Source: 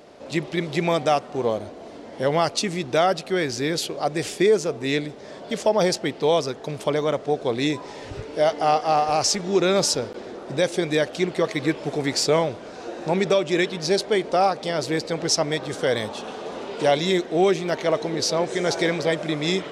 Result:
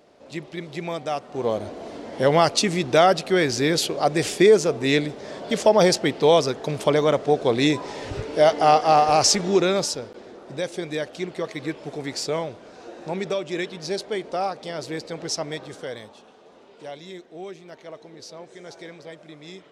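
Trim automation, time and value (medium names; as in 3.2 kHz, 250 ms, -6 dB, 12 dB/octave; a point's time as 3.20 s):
1.07 s -8 dB
1.72 s +3.5 dB
9.45 s +3.5 dB
9.97 s -6.5 dB
15.57 s -6.5 dB
16.33 s -18 dB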